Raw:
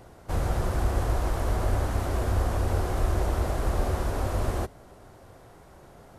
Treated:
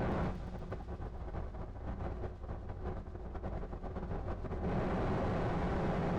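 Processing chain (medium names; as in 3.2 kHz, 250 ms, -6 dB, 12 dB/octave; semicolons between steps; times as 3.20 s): peaking EQ 180 Hz +13.5 dB 0.21 oct; compressor with a negative ratio -38 dBFS, ratio -0.5; hard clipper -39.5 dBFS, distortion -6 dB; tape spacing loss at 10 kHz 33 dB; feedback echo behind a high-pass 118 ms, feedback 82%, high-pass 4.6 kHz, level -3 dB; on a send at -6 dB: reverberation RT60 0.65 s, pre-delay 3 ms; on the sum: trim +8 dB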